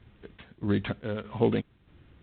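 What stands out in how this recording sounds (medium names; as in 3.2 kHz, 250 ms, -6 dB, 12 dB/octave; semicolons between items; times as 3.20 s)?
a buzz of ramps at a fixed pitch in blocks of 8 samples; chopped level 1.6 Hz, depth 60%, duty 60%; A-law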